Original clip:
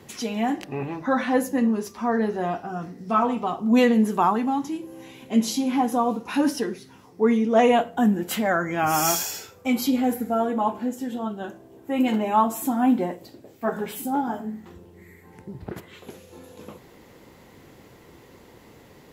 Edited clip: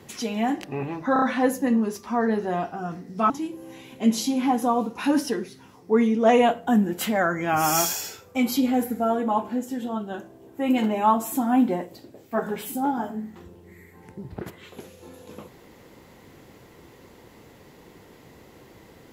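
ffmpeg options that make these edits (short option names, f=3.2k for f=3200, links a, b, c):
-filter_complex "[0:a]asplit=5[a][b][c][d][e];[a]atrim=end=1.162[f];[b]atrim=start=1.128:end=1.162[g];[c]atrim=start=1.128:end=1.162[h];[d]atrim=start=1.128:end=3.212[i];[e]atrim=start=4.598[j];[f][g]acrossfade=d=0.004:c1=hsin:c2=hsin[k];[k][h]acrossfade=d=0.004:c1=hsin:c2=hsin[l];[l][i]acrossfade=d=0.004:c1=hsin:c2=hsin[m];[m][j]acrossfade=d=0.004:c1=hsin:c2=hsin"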